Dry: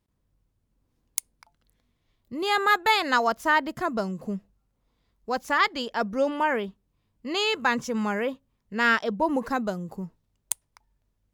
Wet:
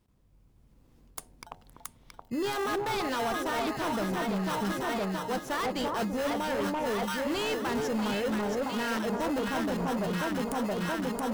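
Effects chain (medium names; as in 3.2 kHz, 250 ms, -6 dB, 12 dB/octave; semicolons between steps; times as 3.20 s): in parallel at -3.5 dB: sample-and-hold 19×; on the sum: peak limiter -12.5 dBFS, peak gain reduction 9 dB; level rider gain up to 5 dB; echo whose repeats swap between lows and highs 337 ms, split 1.1 kHz, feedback 75%, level -3 dB; reverse; compression 5:1, threshold -29 dBFS, peak gain reduction 15.5 dB; reverse; hard clipper -29.5 dBFS, distortion -11 dB; de-hum 91.52 Hz, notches 10; trim +3 dB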